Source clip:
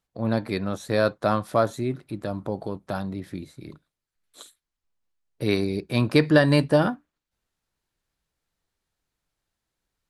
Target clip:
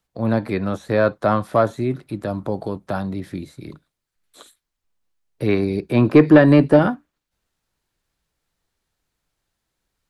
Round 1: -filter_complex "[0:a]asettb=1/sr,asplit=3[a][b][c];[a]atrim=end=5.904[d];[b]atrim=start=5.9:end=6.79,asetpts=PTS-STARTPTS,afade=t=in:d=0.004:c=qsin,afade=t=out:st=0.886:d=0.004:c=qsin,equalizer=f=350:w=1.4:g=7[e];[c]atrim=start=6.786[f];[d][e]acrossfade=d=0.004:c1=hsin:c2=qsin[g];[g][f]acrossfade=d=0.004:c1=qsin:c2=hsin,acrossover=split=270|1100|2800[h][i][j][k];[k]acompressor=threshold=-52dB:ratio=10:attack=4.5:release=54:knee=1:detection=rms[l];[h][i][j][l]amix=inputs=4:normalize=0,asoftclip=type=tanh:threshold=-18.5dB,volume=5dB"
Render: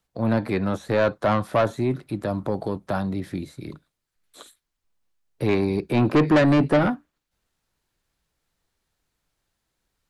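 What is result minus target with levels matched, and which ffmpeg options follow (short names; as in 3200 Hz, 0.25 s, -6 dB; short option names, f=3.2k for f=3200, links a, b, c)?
soft clip: distortion +11 dB
-filter_complex "[0:a]asettb=1/sr,asplit=3[a][b][c];[a]atrim=end=5.904[d];[b]atrim=start=5.9:end=6.79,asetpts=PTS-STARTPTS,afade=t=in:d=0.004:c=qsin,afade=t=out:st=0.886:d=0.004:c=qsin,equalizer=f=350:w=1.4:g=7[e];[c]atrim=start=6.786[f];[d][e]acrossfade=d=0.004:c1=hsin:c2=qsin[g];[g][f]acrossfade=d=0.004:c1=qsin:c2=hsin,acrossover=split=270|1100|2800[h][i][j][k];[k]acompressor=threshold=-52dB:ratio=10:attack=4.5:release=54:knee=1:detection=rms[l];[h][i][j][l]amix=inputs=4:normalize=0,asoftclip=type=tanh:threshold=-7dB,volume=5dB"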